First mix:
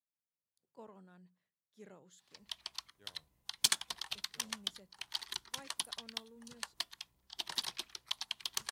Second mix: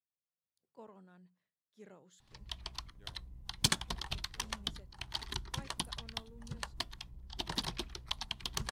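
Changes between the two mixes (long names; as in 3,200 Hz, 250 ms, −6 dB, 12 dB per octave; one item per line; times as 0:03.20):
background: remove high-pass filter 1,400 Hz 6 dB per octave
master: add high-shelf EQ 7,600 Hz −5.5 dB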